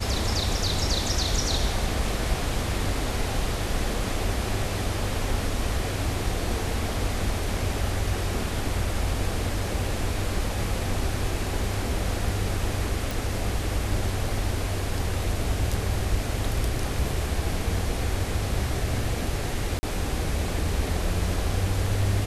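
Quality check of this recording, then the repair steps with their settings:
13.11 s: pop
19.79–19.83 s: dropout 40 ms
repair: de-click; interpolate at 19.79 s, 40 ms

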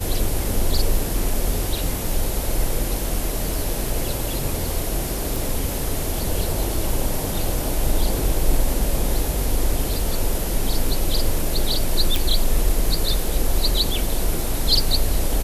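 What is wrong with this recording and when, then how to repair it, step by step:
5.36 s: pop
12.16 s: pop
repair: de-click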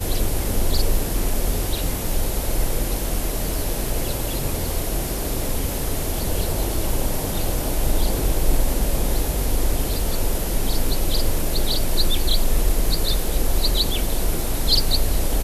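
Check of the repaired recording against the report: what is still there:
nothing left

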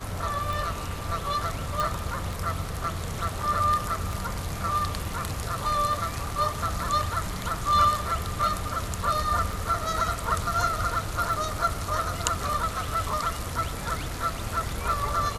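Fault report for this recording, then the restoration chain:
tick 33 1/3 rpm
1.80 s: pop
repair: de-click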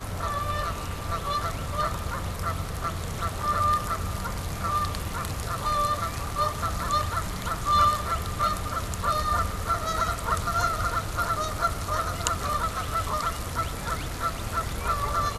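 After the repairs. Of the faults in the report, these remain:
nothing left

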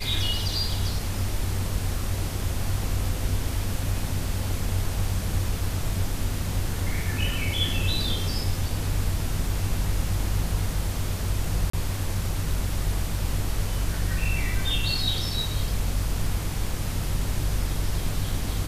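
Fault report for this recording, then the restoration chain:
11.70–11.73 s: dropout 34 ms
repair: interpolate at 11.70 s, 34 ms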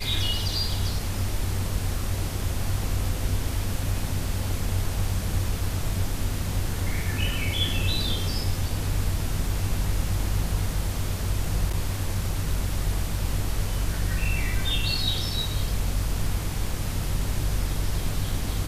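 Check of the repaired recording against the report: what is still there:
nothing left

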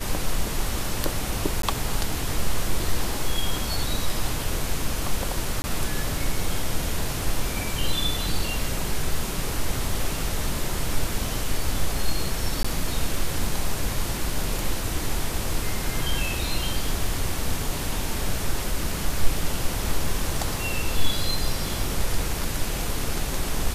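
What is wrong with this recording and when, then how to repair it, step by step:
1.62–1.63 s: dropout 13 ms
5.62–5.64 s: dropout 20 ms
12.63–12.64 s: dropout 15 ms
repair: interpolate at 1.62 s, 13 ms; interpolate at 5.62 s, 20 ms; interpolate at 12.63 s, 15 ms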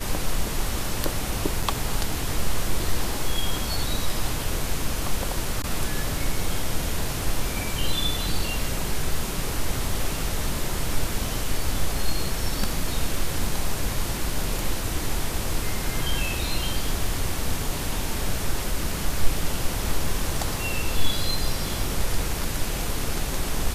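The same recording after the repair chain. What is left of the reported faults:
nothing left

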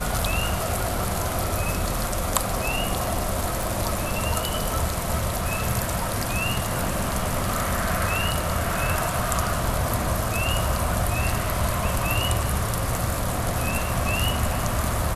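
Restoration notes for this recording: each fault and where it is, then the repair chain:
3.63 s: pop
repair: de-click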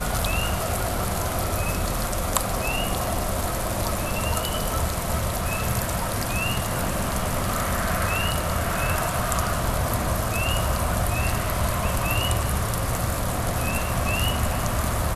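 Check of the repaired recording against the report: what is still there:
nothing left

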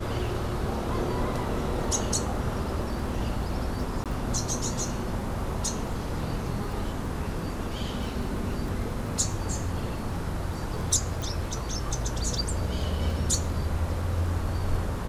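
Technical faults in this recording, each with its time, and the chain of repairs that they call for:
crackle 23 per s -36 dBFS
4.04–4.06 s: dropout 17 ms
11.22 s: pop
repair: de-click; interpolate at 4.04 s, 17 ms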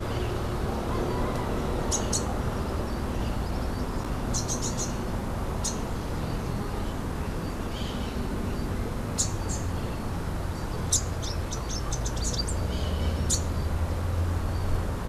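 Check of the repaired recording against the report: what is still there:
nothing left

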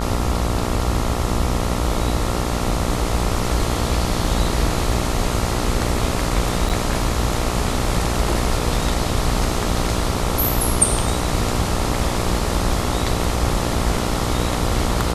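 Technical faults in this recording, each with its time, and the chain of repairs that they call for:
buzz 60 Hz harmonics 23 -24 dBFS
6.69–6.70 s: dropout 7.8 ms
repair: de-hum 60 Hz, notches 23; interpolate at 6.69 s, 7.8 ms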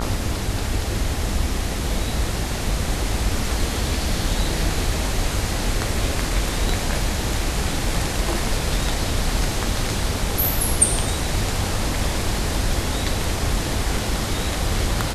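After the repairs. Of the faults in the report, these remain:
nothing left

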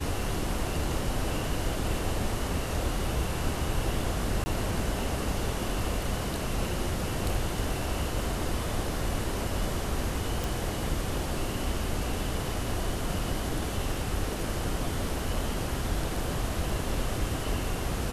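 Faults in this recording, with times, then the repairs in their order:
4.44–4.46 s: dropout 20 ms
10.44 s: pop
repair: de-click; interpolate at 4.44 s, 20 ms

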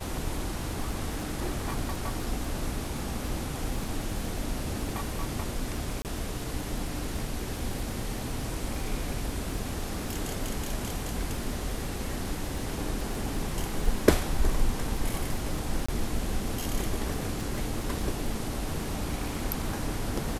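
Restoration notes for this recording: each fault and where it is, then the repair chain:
crackle 31 per s -34 dBFS
6.02–6.05 s: dropout 28 ms
15.86–15.88 s: dropout 25 ms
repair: de-click; interpolate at 6.02 s, 28 ms; interpolate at 15.86 s, 25 ms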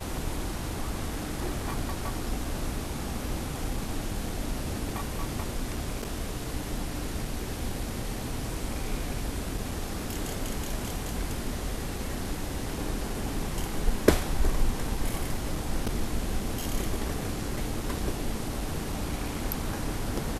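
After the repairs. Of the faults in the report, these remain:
nothing left

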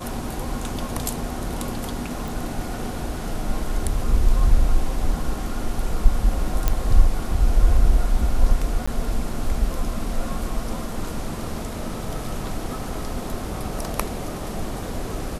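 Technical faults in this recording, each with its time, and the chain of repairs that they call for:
2.28 s: pop
6.68 s: pop -5 dBFS
8.86–8.88 s: dropout 15 ms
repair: de-click; interpolate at 8.86 s, 15 ms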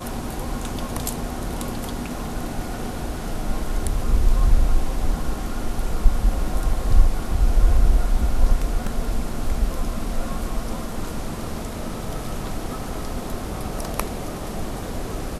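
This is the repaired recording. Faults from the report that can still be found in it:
nothing left

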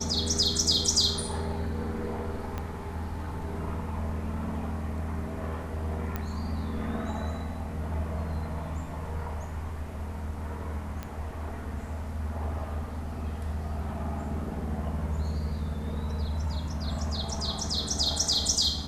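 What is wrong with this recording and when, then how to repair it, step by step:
2.58 s: pop -20 dBFS
6.16 s: pop -18 dBFS
11.03 s: pop -21 dBFS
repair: de-click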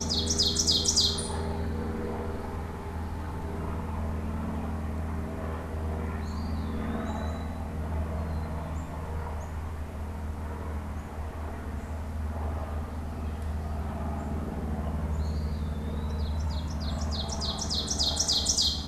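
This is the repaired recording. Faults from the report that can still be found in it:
2.58 s: pop

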